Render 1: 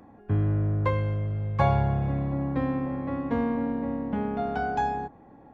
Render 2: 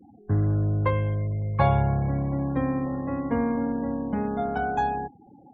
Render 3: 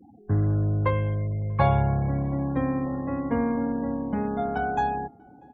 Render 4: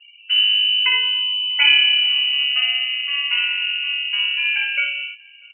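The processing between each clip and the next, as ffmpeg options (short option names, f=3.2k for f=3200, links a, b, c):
-af "afftfilt=real='re*gte(hypot(re,im),0.00891)':imag='im*gte(hypot(re,im),0.00891)':win_size=1024:overlap=0.75,volume=1.5dB"
-filter_complex "[0:a]asplit=2[a][b];[b]adelay=641.4,volume=-29dB,highshelf=f=4k:g=-14.4[c];[a][c]amix=inputs=2:normalize=0"
-af "lowpass=f=2.6k:t=q:w=0.5098,lowpass=f=2.6k:t=q:w=0.6013,lowpass=f=2.6k:t=q:w=0.9,lowpass=f=2.6k:t=q:w=2.563,afreqshift=-3100,aecho=1:1:57|77:0.631|0.316,volume=4dB"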